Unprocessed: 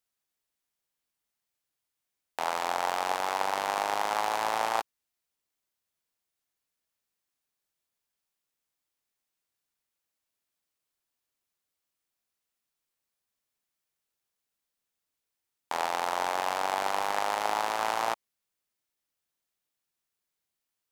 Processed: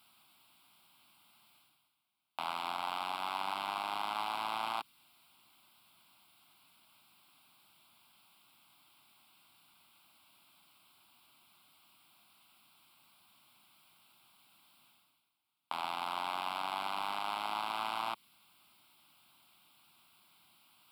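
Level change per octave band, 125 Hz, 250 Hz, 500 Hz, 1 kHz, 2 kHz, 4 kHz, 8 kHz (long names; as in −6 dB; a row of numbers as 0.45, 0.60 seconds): can't be measured, −7.0 dB, −14.0 dB, −7.5 dB, −8.5 dB, −3.0 dB, −14.5 dB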